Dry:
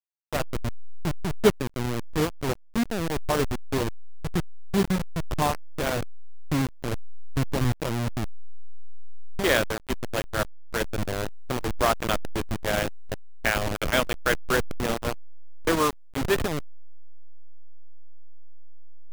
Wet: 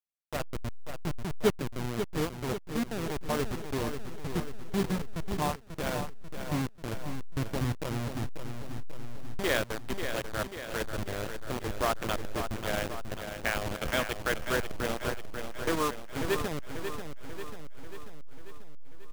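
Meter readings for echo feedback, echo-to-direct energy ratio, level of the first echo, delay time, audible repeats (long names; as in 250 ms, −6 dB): 58%, −6.0 dB, −8.0 dB, 540 ms, 6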